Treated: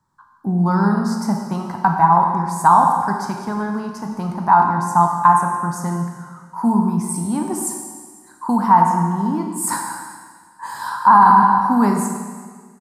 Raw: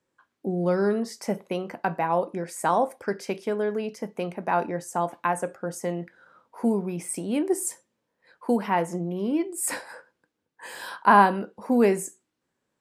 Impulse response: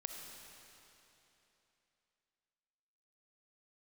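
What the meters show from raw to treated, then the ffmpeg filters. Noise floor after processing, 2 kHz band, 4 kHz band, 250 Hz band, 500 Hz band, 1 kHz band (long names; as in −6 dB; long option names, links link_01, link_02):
−49 dBFS, +4.0 dB, can't be measured, +8.0 dB, −3.0 dB, +12.5 dB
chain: -filter_complex "[0:a]firequalizer=gain_entry='entry(150,0);entry(250,-10);entry(500,-26);entry(910,3);entry(2500,-26);entry(4200,-10)':delay=0.05:min_phase=1[link_01];[1:a]atrim=start_sample=2205,asetrate=83790,aresample=44100[link_02];[link_01][link_02]afir=irnorm=-1:irlink=0,alimiter=level_in=24.5dB:limit=-1dB:release=50:level=0:latency=1,volume=-1dB"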